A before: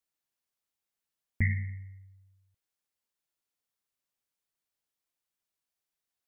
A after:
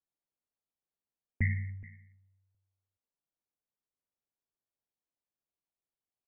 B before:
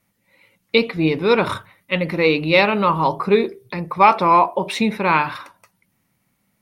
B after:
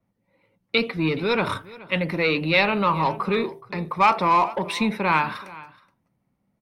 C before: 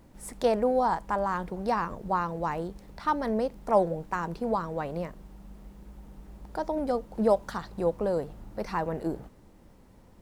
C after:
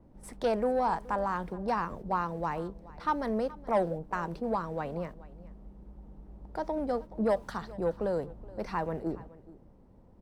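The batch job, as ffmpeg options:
-filter_complex "[0:a]highshelf=f=7.7k:g=-9.5,bandreject=f=6.9k:w=14,acrossover=split=200|1000[a][b][c];[b]asoftclip=type=tanh:threshold=-20dB[d];[c]agate=range=-13dB:threshold=-52dB:ratio=16:detection=peak[e];[a][d][e]amix=inputs=3:normalize=0,aecho=1:1:423:0.1,adynamicequalizer=threshold=0.00891:dfrequency=5900:dqfactor=0.7:tfrequency=5900:tqfactor=0.7:attack=5:release=100:ratio=0.375:range=2.5:mode=boostabove:tftype=highshelf,volume=-2dB"

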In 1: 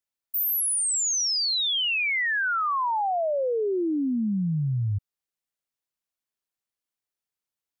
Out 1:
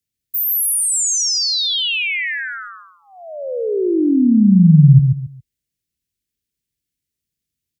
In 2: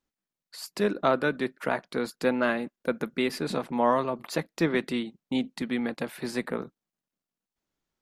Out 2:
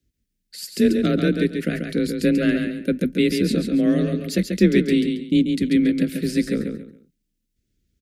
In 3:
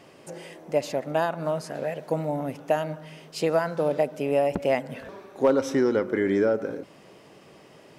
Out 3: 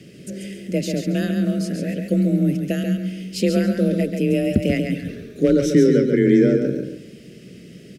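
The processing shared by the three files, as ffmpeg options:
-af "asuperstop=centerf=890:order=4:qfactor=0.63,lowshelf=f=210:g=9.5,aecho=1:1:138|276|414:0.531|0.138|0.0359,afreqshift=29,bass=f=250:g=6,treble=f=4k:g=2,volume=4.5dB"

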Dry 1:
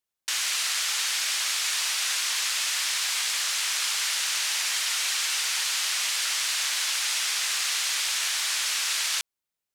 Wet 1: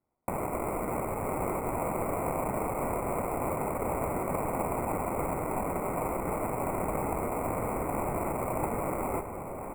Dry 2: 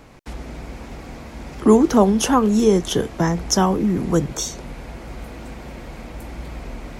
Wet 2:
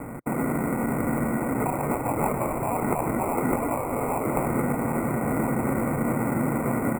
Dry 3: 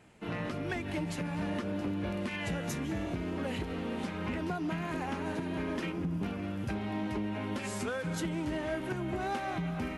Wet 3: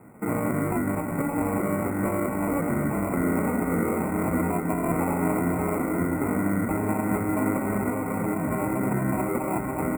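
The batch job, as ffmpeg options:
-filter_complex "[0:a]acrossover=split=470|2900[a][b][c];[c]acompressor=threshold=-40dB:ratio=6[d];[a][b][d]amix=inputs=3:normalize=0,afftfilt=real='re*lt(hypot(re,im),0.141)':imag='im*lt(hypot(re,im),0.141)':win_size=1024:overlap=0.75,equalizer=f=125:t=o:w=1:g=9,equalizer=f=250:t=o:w=1:g=12,equalizer=f=500:t=o:w=1:g=7,equalizer=f=1k:t=o:w=1:g=11,equalizer=f=2k:t=o:w=1:g=-5,equalizer=f=4k:t=o:w=1:g=-10,equalizer=f=8k:t=o:w=1:g=10,asplit=2[e][f];[f]aecho=0:1:583|1166|1749|2332|2915|3498:0.316|0.171|0.0922|0.0498|0.0269|0.0145[g];[e][g]amix=inputs=2:normalize=0,acrusher=samples=26:mix=1:aa=0.000001,asuperstop=centerf=4300:order=12:qfactor=0.76,asplit=2[h][i];[i]adelay=1108,volume=-9dB,highshelf=f=4k:g=-24.9[j];[h][j]amix=inputs=2:normalize=0"

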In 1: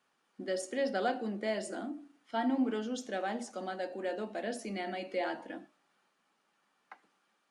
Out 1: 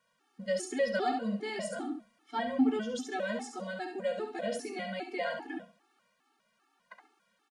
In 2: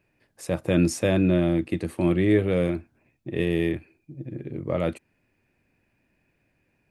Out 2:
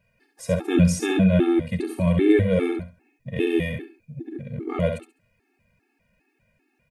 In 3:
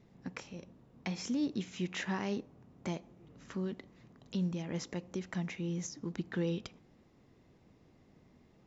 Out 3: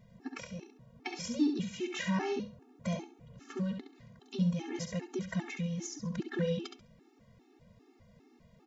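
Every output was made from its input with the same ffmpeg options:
-af "aecho=1:1:68|136|204:0.473|0.109|0.025,afftfilt=real='re*gt(sin(2*PI*2.5*pts/sr)*(1-2*mod(floor(b*sr/1024/230),2)),0)':imag='im*gt(sin(2*PI*2.5*pts/sr)*(1-2*mod(floor(b*sr/1024/230),2)),0)':win_size=1024:overlap=0.75,volume=4.5dB"

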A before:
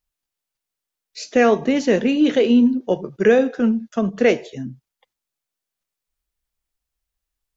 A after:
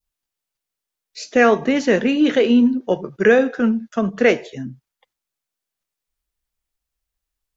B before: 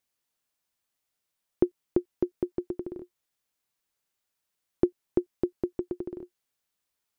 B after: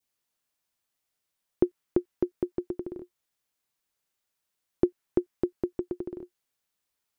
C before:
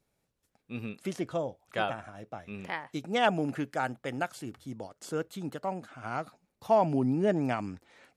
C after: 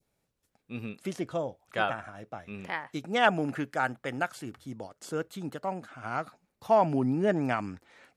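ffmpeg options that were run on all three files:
-af "adynamicequalizer=threshold=0.0126:dfrequency=1500:dqfactor=1.1:tfrequency=1500:tqfactor=1.1:attack=5:release=100:ratio=0.375:range=3:mode=boostabove:tftype=bell"

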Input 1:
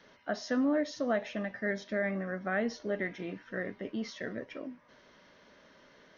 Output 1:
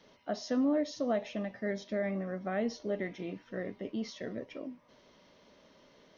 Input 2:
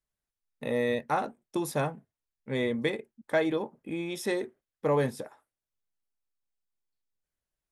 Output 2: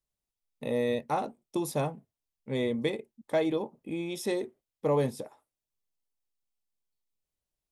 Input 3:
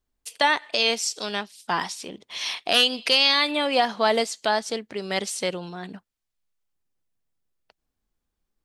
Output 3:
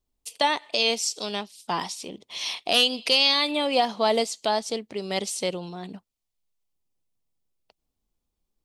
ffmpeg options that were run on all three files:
-af "equalizer=f=1.6k:t=o:w=0.7:g=-10"

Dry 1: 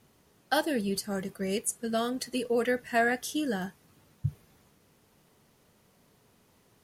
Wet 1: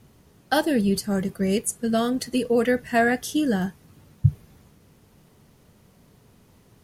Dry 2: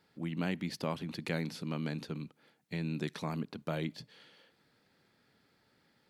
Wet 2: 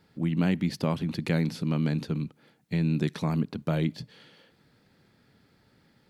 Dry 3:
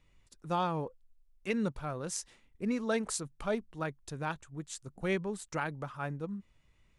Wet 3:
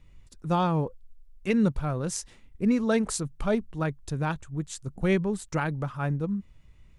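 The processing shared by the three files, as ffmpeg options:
-af "lowshelf=f=240:g=10.5,volume=4dB"

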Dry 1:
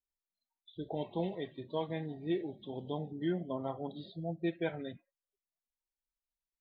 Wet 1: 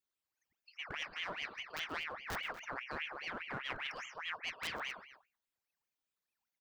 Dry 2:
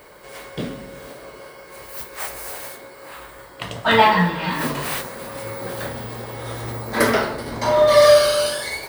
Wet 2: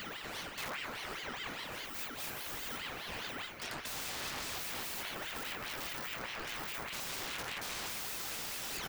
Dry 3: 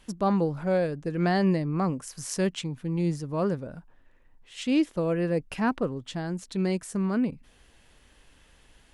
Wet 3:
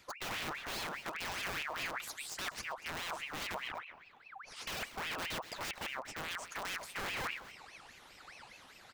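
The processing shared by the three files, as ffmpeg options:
-filter_complex "[0:a]afftfilt=real='re*pow(10,11/40*sin(2*PI*(0.95*log(max(b,1)*sr/1024/100)/log(2)-(1.5)*(pts-256)/sr)))':imag='im*pow(10,11/40*sin(2*PI*(0.95*log(max(b,1)*sr/1024/100)/log(2)-(1.5)*(pts-256)/sr)))':win_size=1024:overlap=0.75,lowshelf=f=110:g=-4.5,acrossover=split=140|4300[a][b][c];[a]acompressor=threshold=-42dB:ratio=4[d];[b]acompressor=threshold=-19dB:ratio=4[e];[d][e][c]amix=inputs=3:normalize=0,aeval=exprs='(mod(13.3*val(0)+1,2)-1)/13.3':c=same,areverse,acompressor=threshold=-39dB:ratio=8,areverse,equalizer=f=10k:w=1.5:g=-7.5,aecho=1:1:127|240:0.119|0.126,aeval=exprs='clip(val(0),-1,0.00562)':c=same,bandreject=f=60:t=h:w=6,bandreject=f=120:t=h:w=6,bandreject=f=180:t=h:w=6,bandreject=f=240:t=h:w=6,bandreject=f=300:t=h:w=6,bandreject=f=360:t=h:w=6,aeval=exprs='val(0)*sin(2*PI*1700*n/s+1700*0.55/4.9*sin(2*PI*4.9*n/s))':c=same,volume=5.5dB"

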